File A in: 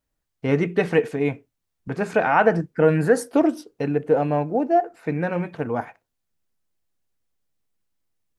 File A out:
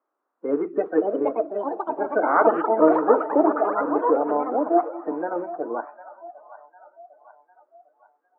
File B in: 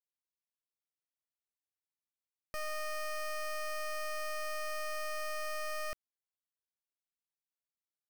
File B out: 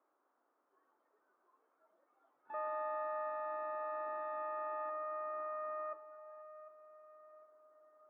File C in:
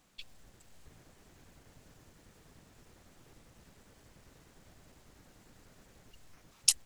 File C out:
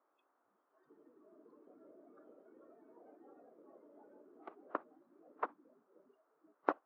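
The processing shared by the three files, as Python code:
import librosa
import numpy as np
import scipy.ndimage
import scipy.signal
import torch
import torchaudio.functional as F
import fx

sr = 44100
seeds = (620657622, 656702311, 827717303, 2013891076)

p1 = fx.spec_quant(x, sr, step_db=30)
p2 = p1 + fx.echo_split(p1, sr, split_hz=400.0, low_ms=226, high_ms=753, feedback_pct=52, wet_db=-14.0, dry=0)
p3 = fx.dmg_noise_colour(p2, sr, seeds[0], colour='white', level_db=-52.0)
p4 = fx.echo_pitch(p3, sr, ms=704, semitones=6, count=3, db_per_echo=-3.0)
p5 = fx.noise_reduce_blind(p4, sr, reduce_db=21)
p6 = (np.kron(p5[::4], np.eye(4)[0]) * 4)[:len(p5)]
y = scipy.signal.sosfilt(scipy.signal.ellip(3, 1.0, 80, [290.0, 1300.0], 'bandpass', fs=sr, output='sos'), p6)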